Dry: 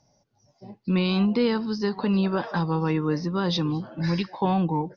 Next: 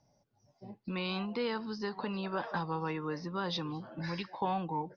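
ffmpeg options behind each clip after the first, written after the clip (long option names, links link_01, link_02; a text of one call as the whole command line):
ffmpeg -i in.wav -filter_complex "[0:a]acrossover=split=530[link_01][link_02];[link_01]acompressor=threshold=-34dB:ratio=4[link_03];[link_02]highshelf=frequency=4900:gain=-8.5[link_04];[link_03][link_04]amix=inputs=2:normalize=0,volume=-5dB" out.wav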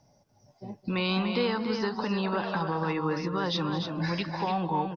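ffmpeg -i in.wav -filter_complex "[0:a]alimiter=level_in=3.5dB:limit=-24dB:level=0:latency=1:release=66,volume=-3.5dB,asplit=2[link_01][link_02];[link_02]aecho=0:1:212|292:0.188|0.473[link_03];[link_01][link_03]amix=inputs=2:normalize=0,volume=7.5dB" out.wav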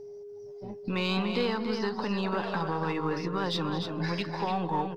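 ffmpeg -i in.wav -af "aeval=exprs='if(lt(val(0),0),0.708*val(0),val(0))':channel_layout=same,aeval=exprs='val(0)+0.00891*sin(2*PI*410*n/s)':channel_layout=same" out.wav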